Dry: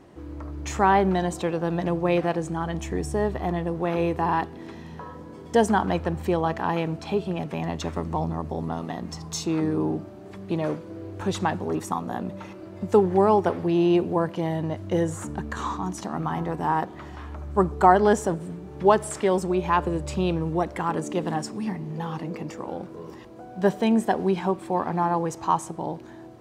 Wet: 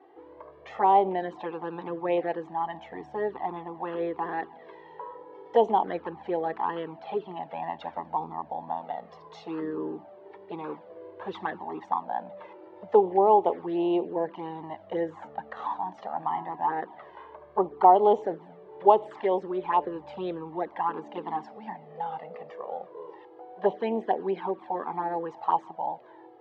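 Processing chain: touch-sensitive flanger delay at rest 2.7 ms, full sweep at -16.5 dBFS; cabinet simulation 440–3000 Hz, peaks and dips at 450 Hz +4 dB, 840 Hz +7 dB, 1.4 kHz -7 dB, 2.5 kHz -8 dB

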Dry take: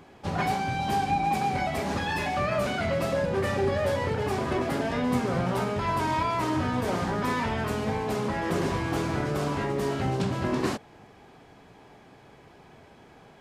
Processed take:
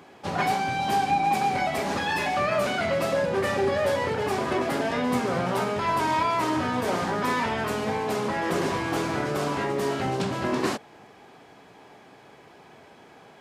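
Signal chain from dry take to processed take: high-pass 270 Hz 6 dB/octave; trim +3.5 dB

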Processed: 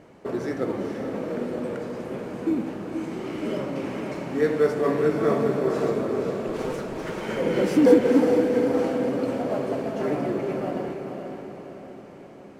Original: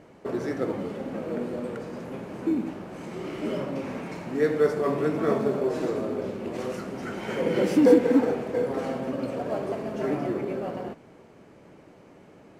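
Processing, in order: 6.48–7.21 s: comb filter that takes the minimum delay 6.3 ms; echo that smears into a reverb 479 ms, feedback 54%, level -6 dB; trim +1 dB

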